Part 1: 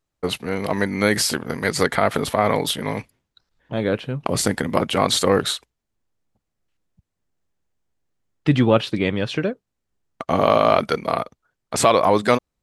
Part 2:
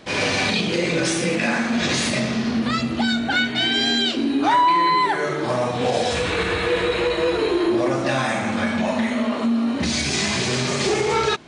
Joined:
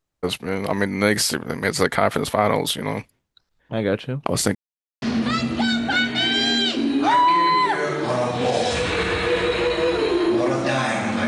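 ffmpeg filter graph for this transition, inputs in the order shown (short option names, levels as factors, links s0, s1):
-filter_complex "[0:a]apad=whole_dur=11.27,atrim=end=11.27,asplit=2[s0][s1];[s0]atrim=end=4.55,asetpts=PTS-STARTPTS,afade=t=out:st=4.546:d=0.004:c=hsin[s2];[s1]atrim=start=4.55:end=5.02,asetpts=PTS-STARTPTS,volume=0[s3];[1:a]atrim=start=2.42:end=8.67,asetpts=PTS-STARTPTS,afade=t=in:d=0.004:c=hsin[s4];[s2][s3][s4]concat=n=3:v=0:a=1"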